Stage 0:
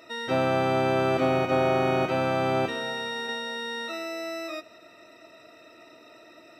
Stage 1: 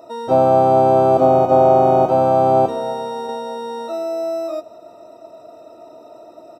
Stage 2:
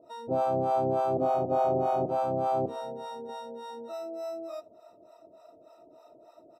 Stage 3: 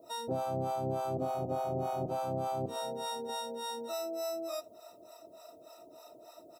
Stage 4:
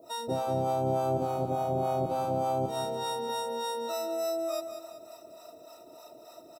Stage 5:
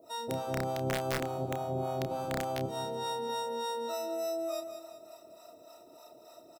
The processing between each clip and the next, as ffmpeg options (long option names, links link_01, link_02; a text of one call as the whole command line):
ffmpeg -i in.wav -af "firequalizer=gain_entry='entry(310,0);entry(740,9);entry(1900,-21);entry(3200,-13);entry(7200,-4)':delay=0.05:min_phase=1,areverse,acompressor=mode=upward:threshold=-44dB:ratio=2.5,areverse,volume=6.5dB" out.wav
ffmpeg -i in.wav -filter_complex "[0:a]acrossover=split=580[link_01][link_02];[link_01]aeval=exprs='val(0)*(1-1/2+1/2*cos(2*PI*3.4*n/s))':channel_layout=same[link_03];[link_02]aeval=exprs='val(0)*(1-1/2-1/2*cos(2*PI*3.4*n/s))':channel_layout=same[link_04];[link_03][link_04]amix=inputs=2:normalize=0,volume=-8.5dB" out.wav
ffmpeg -i in.wav -filter_complex "[0:a]acrossover=split=190[link_01][link_02];[link_02]acompressor=threshold=-34dB:ratio=6[link_03];[link_01][link_03]amix=inputs=2:normalize=0,crystalizer=i=5:c=0" out.wav
ffmpeg -i in.wav -af "aecho=1:1:191|382|573|764|955:0.355|0.167|0.0784|0.0368|0.0173,volume=3dB" out.wav
ffmpeg -i in.wav -filter_complex "[0:a]aeval=exprs='(mod(10*val(0)+1,2)-1)/10':channel_layout=same,asplit=2[link_01][link_02];[link_02]adelay=30,volume=-9.5dB[link_03];[link_01][link_03]amix=inputs=2:normalize=0,volume=-4dB" out.wav